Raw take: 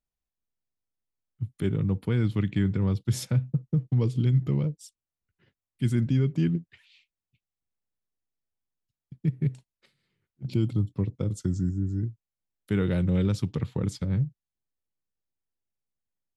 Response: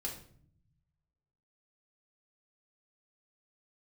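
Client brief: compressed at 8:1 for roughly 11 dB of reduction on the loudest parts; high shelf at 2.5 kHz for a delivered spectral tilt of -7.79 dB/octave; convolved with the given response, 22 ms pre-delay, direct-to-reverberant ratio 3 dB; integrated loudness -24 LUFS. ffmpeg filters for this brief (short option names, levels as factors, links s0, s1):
-filter_complex "[0:a]highshelf=f=2500:g=8,acompressor=threshold=0.0282:ratio=8,asplit=2[s0][s1];[1:a]atrim=start_sample=2205,adelay=22[s2];[s1][s2]afir=irnorm=-1:irlink=0,volume=0.708[s3];[s0][s3]amix=inputs=2:normalize=0,volume=3.16"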